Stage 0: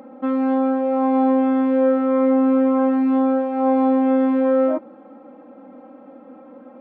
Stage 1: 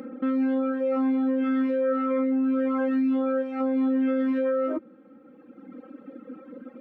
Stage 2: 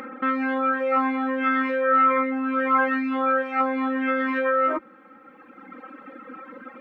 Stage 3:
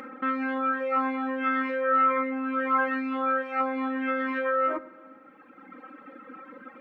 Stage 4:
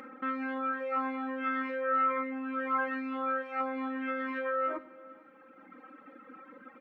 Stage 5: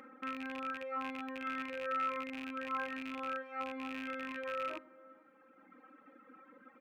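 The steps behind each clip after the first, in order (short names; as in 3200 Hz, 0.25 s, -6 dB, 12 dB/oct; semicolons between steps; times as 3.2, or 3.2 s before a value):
reverb removal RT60 2 s; band shelf 790 Hz -15 dB 1 oct; limiter -24 dBFS, peak gain reduction 9.5 dB; gain +5 dB
ten-band EQ 125 Hz -7 dB, 250 Hz -7 dB, 500 Hz -6 dB, 1000 Hz +9 dB, 2000 Hz +9 dB; gain +5.5 dB
reverb RT60 1.6 s, pre-delay 7 ms, DRR 14 dB; gain -4.5 dB
feedback echo 0.446 s, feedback 51%, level -23.5 dB; gain -6 dB
rattling part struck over -48 dBFS, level -25 dBFS; gain -7.5 dB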